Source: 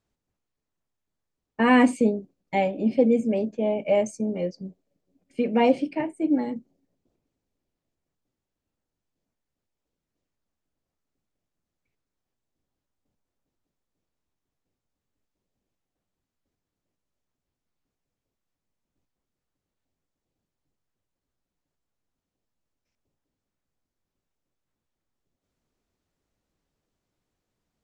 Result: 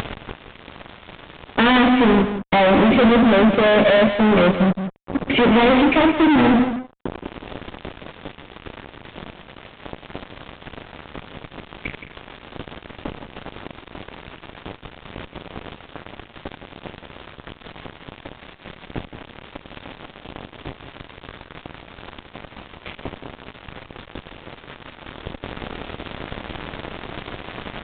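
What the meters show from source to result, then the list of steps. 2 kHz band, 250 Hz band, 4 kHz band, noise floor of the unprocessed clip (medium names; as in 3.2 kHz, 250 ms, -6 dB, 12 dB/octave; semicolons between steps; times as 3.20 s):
+12.5 dB, +8.5 dB, +17.5 dB, under -85 dBFS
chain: bass shelf 310 Hz -2 dB; de-hum 254.8 Hz, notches 35; in parallel at +3 dB: upward compressor, threshold -23 dBFS; on the sum: fuzz box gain 39 dB, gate -43 dBFS; on a send: delay 170 ms -10 dB; on the sum: resampled via 8 kHz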